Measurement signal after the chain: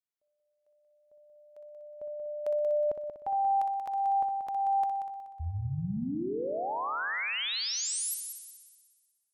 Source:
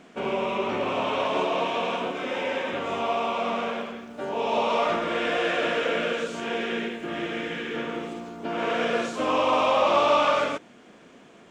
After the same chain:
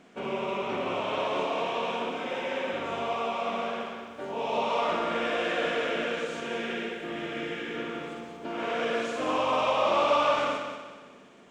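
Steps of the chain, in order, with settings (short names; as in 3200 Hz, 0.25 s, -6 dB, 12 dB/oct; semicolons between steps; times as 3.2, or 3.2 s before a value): multi-head echo 61 ms, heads first and third, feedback 55%, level -8 dB; gain -5 dB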